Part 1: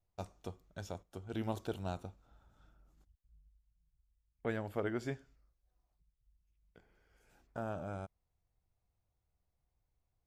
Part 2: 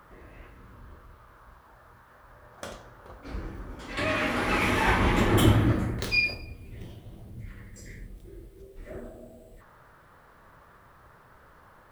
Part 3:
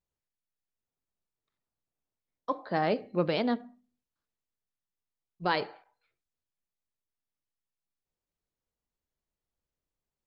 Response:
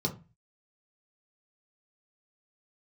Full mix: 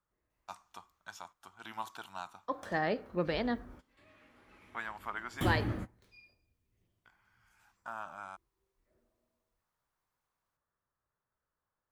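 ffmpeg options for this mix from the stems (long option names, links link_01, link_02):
-filter_complex "[0:a]highpass=190,lowshelf=frequency=700:width_type=q:width=3:gain=-13,adelay=300,volume=1.5dB[link_01];[1:a]volume=-11.5dB[link_02];[2:a]equalizer=frequency=1800:width=6:gain=9.5,volume=-5dB,asplit=2[link_03][link_04];[link_04]apad=whole_len=525640[link_05];[link_02][link_05]sidechaingate=range=-24dB:threshold=-59dB:ratio=16:detection=peak[link_06];[link_01][link_06][link_03]amix=inputs=3:normalize=0"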